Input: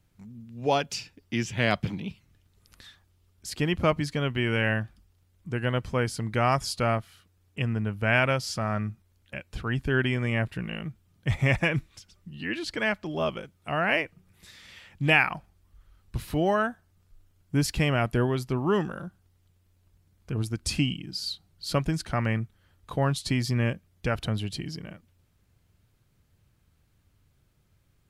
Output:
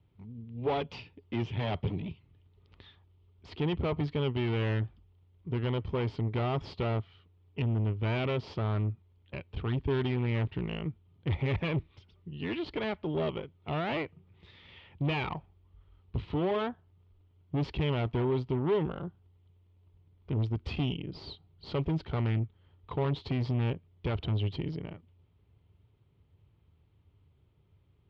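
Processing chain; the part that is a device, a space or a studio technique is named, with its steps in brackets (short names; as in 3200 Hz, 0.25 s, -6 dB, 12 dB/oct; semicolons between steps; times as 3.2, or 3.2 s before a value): guitar amplifier (tube stage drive 30 dB, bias 0.7; tone controls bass +10 dB, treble -9 dB; speaker cabinet 76–4000 Hz, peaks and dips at 130 Hz -5 dB, 200 Hz -8 dB, 410 Hz +8 dB, 920 Hz +5 dB, 1600 Hz -8 dB, 3200 Hz +5 dB)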